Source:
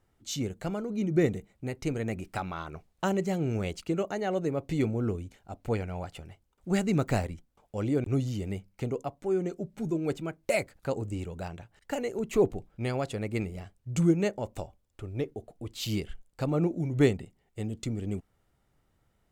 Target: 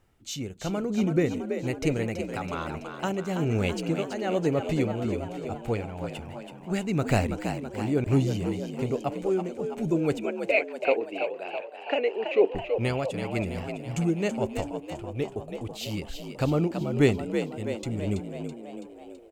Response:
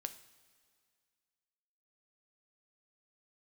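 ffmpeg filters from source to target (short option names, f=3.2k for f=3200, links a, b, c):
-filter_complex "[0:a]equalizer=f=2.6k:t=o:w=0.37:g=5,tremolo=f=1.1:d=0.59,asettb=1/sr,asplit=3[a][b][c];[a]atrim=end=10.194[d];[b]atrim=start=10.19:end=12.55,asetpts=PTS-STARTPTS,afade=t=in:d=0.004:c=qsin,afade=t=out:st=2.356:d=0.004:c=qsin,highpass=f=300:w=0.5412,highpass=f=300:w=1.3066,equalizer=f=460:t=q:w=4:g=6,equalizer=f=650:t=q:w=4:g=4,equalizer=f=1.2k:t=q:w=4:g=-3,equalizer=f=2.5k:t=q:w=4:g=9,lowpass=f=3.8k:w=0.5412,lowpass=f=3.8k:w=1.3066[e];[c]atrim=start=12.546[f];[d][e]acrossfade=d=0.004:c1=hsin:c2=qsin[g];[g][f]acrossfade=d=0.004:c1=qsin:c2=hsin,asplit=8[h][i][j][k][l][m][n][o];[i]adelay=329,afreqshift=58,volume=-7.5dB[p];[j]adelay=658,afreqshift=116,volume=-12.2dB[q];[k]adelay=987,afreqshift=174,volume=-17dB[r];[l]adelay=1316,afreqshift=232,volume=-21.7dB[s];[m]adelay=1645,afreqshift=290,volume=-26.4dB[t];[n]adelay=1974,afreqshift=348,volume=-31.2dB[u];[o]adelay=2303,afreqshift=406,volume=-35.9dB[v];[h][p][q][r][s][t][u][v]amix=inputs=8:normalize=0,volume=5dB"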